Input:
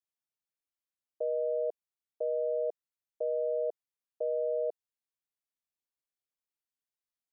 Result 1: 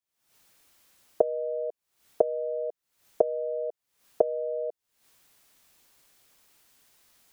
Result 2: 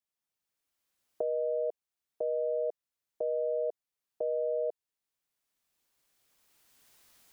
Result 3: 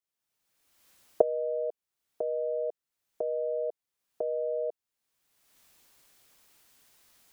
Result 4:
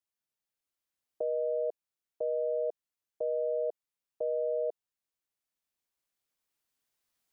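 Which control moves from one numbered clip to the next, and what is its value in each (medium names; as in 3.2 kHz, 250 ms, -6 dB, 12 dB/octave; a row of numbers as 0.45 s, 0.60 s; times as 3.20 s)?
recorder AGC, rising by: 86 dB/s, 14 dB/s, 35 dB/s, 5 dB/s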